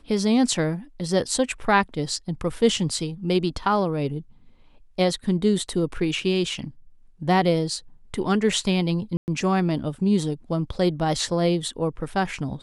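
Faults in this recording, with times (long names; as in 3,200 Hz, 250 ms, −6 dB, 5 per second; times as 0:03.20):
0:09.17–0:09.28: drop-out 109 ms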